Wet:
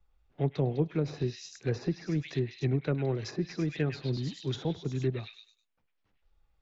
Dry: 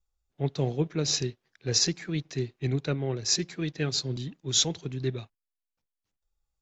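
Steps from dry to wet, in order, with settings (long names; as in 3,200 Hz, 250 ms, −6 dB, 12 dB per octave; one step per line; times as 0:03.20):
low-pass that shuts in the quiet parts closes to 2,400 Hz
on a send: echo through a band-pass that steps 101 ms, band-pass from 2,700 Hz, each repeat 0.7 octaves, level −0.5 dB
on the sum: treble cut that deepens with the level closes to 990 Hz, closed at −23.5 dBFS
multiband upward and downward compressor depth 40%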